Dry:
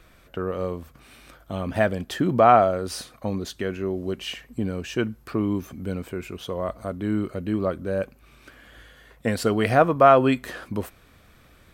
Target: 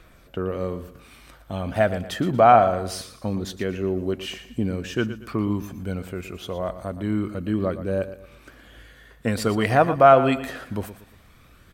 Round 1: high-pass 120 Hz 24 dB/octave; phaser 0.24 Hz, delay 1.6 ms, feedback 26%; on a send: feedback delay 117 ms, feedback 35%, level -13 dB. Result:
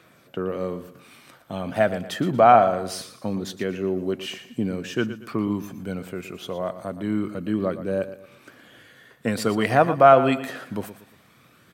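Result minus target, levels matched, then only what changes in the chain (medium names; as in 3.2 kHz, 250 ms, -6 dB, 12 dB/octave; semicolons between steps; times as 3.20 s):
125 Hz band -3.0 dB
remove: high-pass 120 Hz 24 dB/octave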